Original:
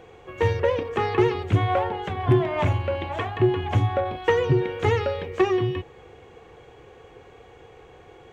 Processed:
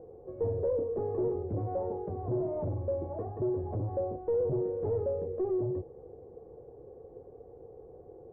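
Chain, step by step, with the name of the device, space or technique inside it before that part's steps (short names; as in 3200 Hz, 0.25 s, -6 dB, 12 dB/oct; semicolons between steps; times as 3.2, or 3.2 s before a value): overdriven synthesiser ladder filter (soft clip -25.5 dBFS, distortion -6 dB; ladder low-pass 640 Hz, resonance 40%); gain +3.5 dB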